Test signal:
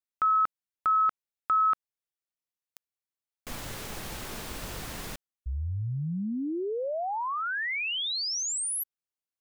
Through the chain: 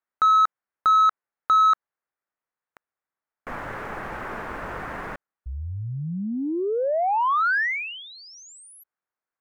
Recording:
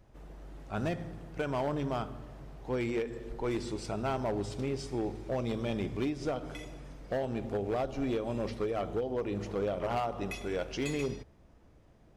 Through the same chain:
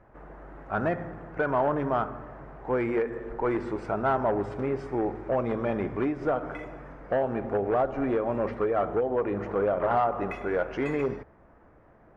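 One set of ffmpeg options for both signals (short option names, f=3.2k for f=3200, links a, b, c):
-filter_complex "[0:a]highshelf=f=2.5k:t=q:w=1.5:g=-14,asplit=2[a][b];[b]highpass=f=720:p=1,volume=11dB,asoftclip=type=tanh:threshold=-17dB[c];[a][c]amix=inputs=2:normalize=0,lowpass=f=1.7k:p=1,volume=-6dB,volume=5dB"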